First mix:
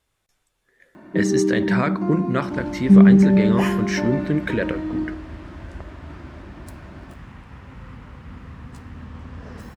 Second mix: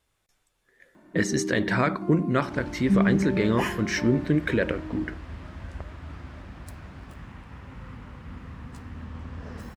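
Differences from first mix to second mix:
first sound -6.5 dB; reverb: off

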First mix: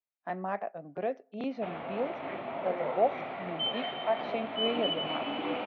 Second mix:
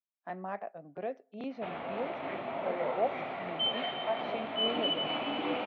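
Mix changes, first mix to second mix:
speech -4.5 dB; background: remove distance through air 67 m

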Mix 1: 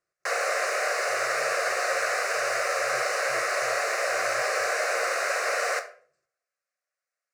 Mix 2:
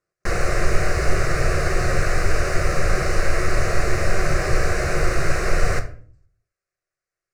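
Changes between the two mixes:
speech: add bass shelf 490 Hz +9.5 dB; background: remove steep high-pass 490 Hz 48 dB/octave

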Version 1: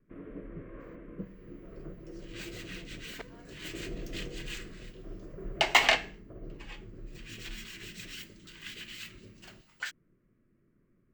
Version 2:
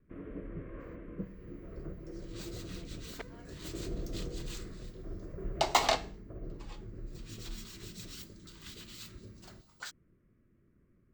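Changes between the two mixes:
first sound: add peaking EQ 70 Hz +12.5 dB 0.7 oct; second sound: add high-order bell 2.2 kHz -11.5 dB 1.2 oct

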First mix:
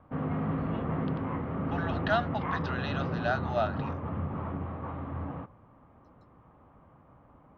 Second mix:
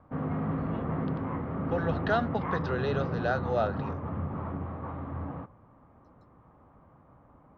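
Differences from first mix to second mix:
speech: remove brick-wall FIR high-pass 560 Hz; master: add peaking EQ 2.9 kHz -5 dB 0.77 oct

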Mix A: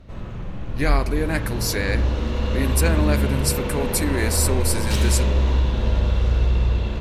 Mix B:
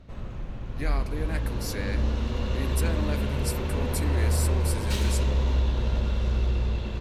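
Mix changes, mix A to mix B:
speech -11.0 dB; background: send off

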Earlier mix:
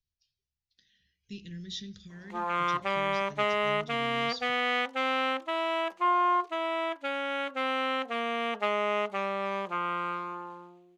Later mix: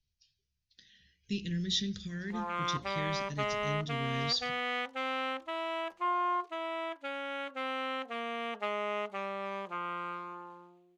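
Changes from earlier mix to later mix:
speech +7.5 dB; background -6.0 dB

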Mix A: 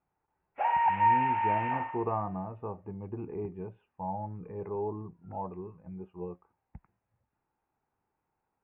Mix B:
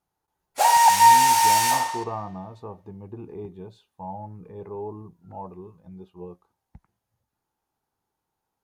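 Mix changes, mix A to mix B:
background +10.0 dB; master: remove steep low-pass 2.7 kHz 72 dB/octave

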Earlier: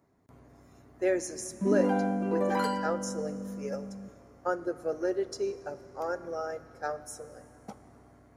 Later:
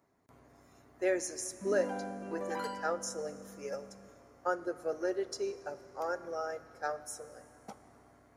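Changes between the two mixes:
background -7.5 dB; master: add bass shelf 380 Hz -8.5 dB

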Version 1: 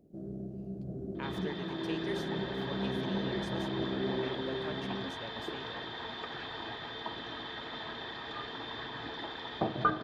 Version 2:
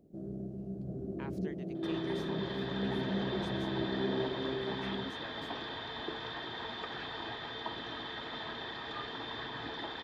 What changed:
speech -5.5 dB; second sound: entry +0.60 s

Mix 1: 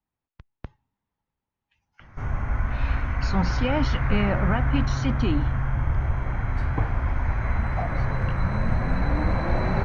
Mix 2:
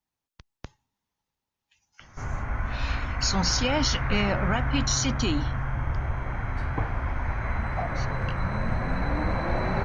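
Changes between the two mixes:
speech: remove low-pass 2.3 kHz 12 dB/octave; master: add bass shelf 250 Hz -5 dB

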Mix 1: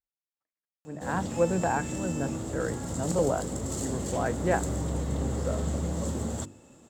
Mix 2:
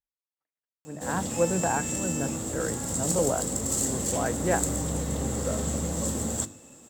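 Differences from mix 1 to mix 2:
background: send on; master: add treble shelf 7.3 kHz +11 dB

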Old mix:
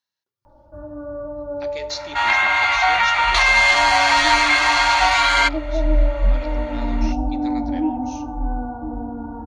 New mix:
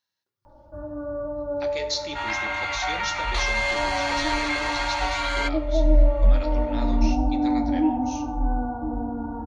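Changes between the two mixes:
speech: send +8.0 dB; second sound -11.0 dB

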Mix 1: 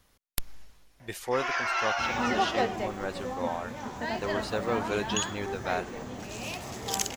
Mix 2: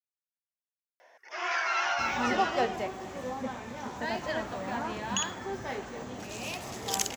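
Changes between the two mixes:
speech: muted; master: add bass shelf 140 Hz -5 dB

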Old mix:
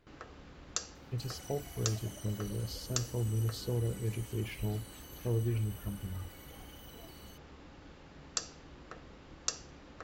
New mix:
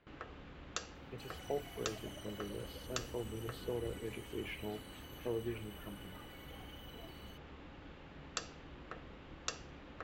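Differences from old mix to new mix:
speech: add band-pass 310–2900 Hz; master: add resonant high shelf 4.1 kHz -7.5 dB, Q 1.5

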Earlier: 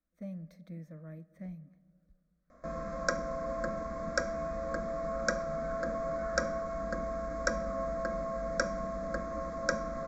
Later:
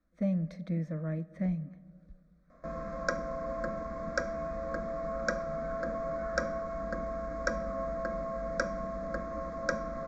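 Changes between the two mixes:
speech +12.0 dB; master: add distance through air 88 m

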